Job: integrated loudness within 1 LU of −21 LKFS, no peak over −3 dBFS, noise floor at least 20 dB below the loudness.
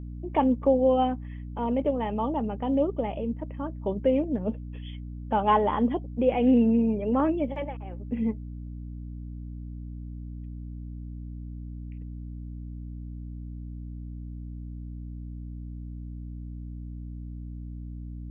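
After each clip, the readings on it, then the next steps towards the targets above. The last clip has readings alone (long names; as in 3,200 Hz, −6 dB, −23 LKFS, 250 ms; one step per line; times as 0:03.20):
mains hum 60 Hz; hum harmonics up to 300 Hz; level of the hum −35 dBFS; integrated loudness −26.5 LKFS; sample peak −10.0 dBFS; target loudness −21.0 LKFS
→ mains-hum notches 60/120/180/240/300 Hz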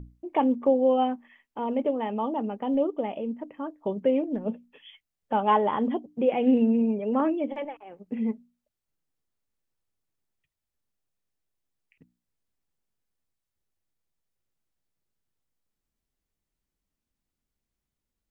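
mains hum none found; integrated loudness −26.5 LKFS; sample peak −10.5 dBFS; target loudness −21.0 LKFS
→ level +5.5 dB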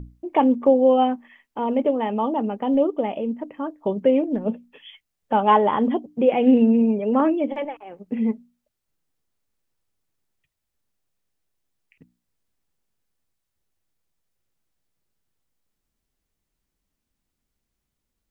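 integrated loudness −21.0 LKFS; sample peak −5.0 dBFS; background noise floor −81 dBFS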